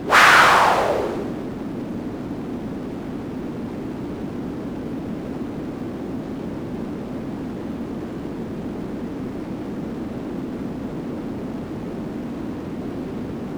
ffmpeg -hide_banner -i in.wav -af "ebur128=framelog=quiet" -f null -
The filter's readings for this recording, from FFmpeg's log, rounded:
Integrated loudness:
  I:         -23.7 LUFS
  Threshold: -33.7 LUFS
Loudness range:
  LRA:         6.7 LU
  Threshold: -47.6 LUFS
  LRA low:   -29.7 LUFS
  LRA high:  -23.0 LUFS